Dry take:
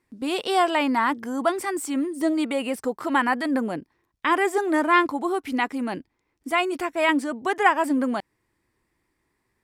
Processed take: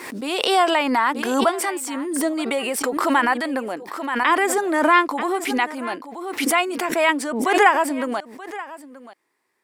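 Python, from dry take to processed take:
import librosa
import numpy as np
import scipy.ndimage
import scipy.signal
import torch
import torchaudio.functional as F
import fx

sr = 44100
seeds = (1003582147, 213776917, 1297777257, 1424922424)

p1 = scipy.signal.sosfilt(scipy.signal.butter(2, 390.0, 'highpass', fs=sr, output='sos'), x)
p2 = p1 + fx.echo_single(p1, sr, ms=930, db=-17.5, dry=0)
p3 = fx.pre_swell(p2, sr, db_per_s=42.0)
y = p3 * librosa.db_to_amplitude(3.0)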